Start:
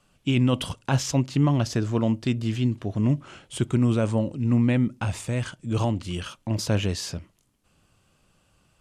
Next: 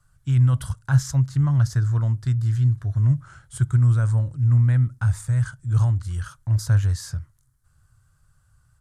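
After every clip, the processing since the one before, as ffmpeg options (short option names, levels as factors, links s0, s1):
-af "firequalizer=gain_entry='entry(130,0);entry(190,-23);entry(420,-24);entry(1500,-5);entry(2600,-27);entry(3900,-16);entry(8700,-7)':delay=0.05:min_phase=1,volume=2.51"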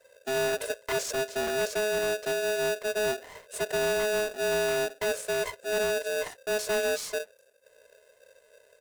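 -af "aecho=1:1:3.3:0.62,asoftclip=type=tanh:threshold=0.0668,aeval=exprs='val(0)*sgn(sin(2*PI*530*n/s))':c=same,volume=0.891"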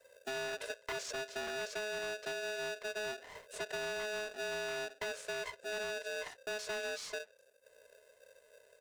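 -filter_complex "[0:a]acrossover=split=890|6800[s0][s1][s2];[s0]acompressor=threshold=0.01:ratio=4[s3];[s1]acompressor=threshold=0.0178:ratio=4[s4];[s2]acompressor=threshold=0.00141:ratio=4[s5];[s3][s4][s5]amix=inputs=3:normalize=0,volume=0.631"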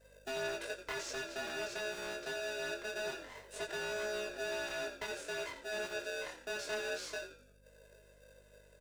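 -filter_complex "[0:a]aeval=exprs='val(0)+0.000447*(sin(2*PI*50*n/s)+sin(2*PI*2*50*n/s)/2+sin(2*PI*3*50*n/s)/3+sin(2*PI*4*50*n/s)/4+sin(2*PI*5*50*n/s)/5)':c=same,asplit=5[s0][s1][s2][s3][s4];[s1]adelay=86,afreqshift=-64,volume=0.299[s5];[s2]adelay=172,afreqshift=-128,volume=0.0989[s6];[s3]adelay=258,afreqshift=-192,volume=0.0324[s7];[s4]adelay=344,afreqshift=-256,volume=0.0107[s8];[s0][s5][s6][s7][s8]amix=inputs=5:normalize=0,flanger=delay=19:depth=6.5:speed=0.25,volume=1.33"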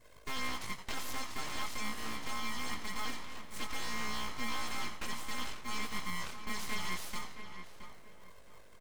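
-filter_complex "[0:a]aeval=exprs='abs(val(0))':c=same,asplit=2[s0][s1];[s1]adelay=671,lowpass=f=2600:p=1,volume=0.355,asplit=2[s2][s3];[s3]adelay=671,lowpass=f=2600:p=1,volume=0.28,asplit=2[s4][s5];[s5]adelay=671,lowpass=f=2600:p=1,volume=0.28[s6];[s0][s2][s4][s6]amix=inputs=4:normalize=0,volume=1.58"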